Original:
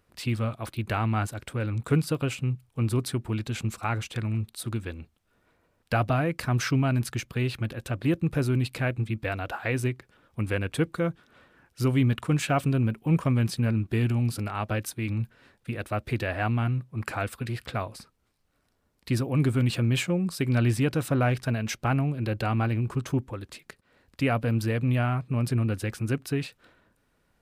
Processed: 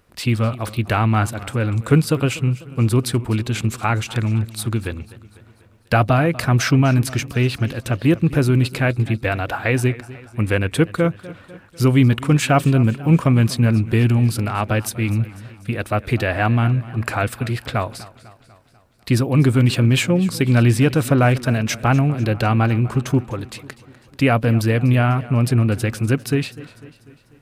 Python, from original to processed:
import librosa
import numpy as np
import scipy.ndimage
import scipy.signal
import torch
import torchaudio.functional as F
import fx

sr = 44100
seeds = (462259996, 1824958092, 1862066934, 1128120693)

y = fx.echo_warbled(x, sr, ms=247, feedback_pct=55, rate_hz=2.8, cents=102, wet_db=-18.5)
y = F.gain(torch.from_numpy(y), 9.0).numpy()